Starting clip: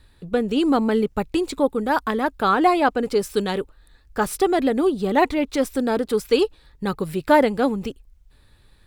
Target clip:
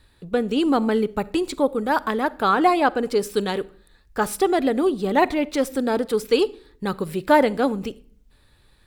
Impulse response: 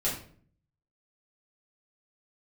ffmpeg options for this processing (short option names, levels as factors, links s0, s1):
-filter_complex "[0:a]lowshelf=f=150:g=-4.5,asplit=2[s0][s1];[1:a]atrim=start_sample=2205,adelay=41[s2];[s1][s2]afir=irnorm=-1:irlink=0,volume=0.0422[s3];[s0][s3]amix=inputs=2:normalize=0"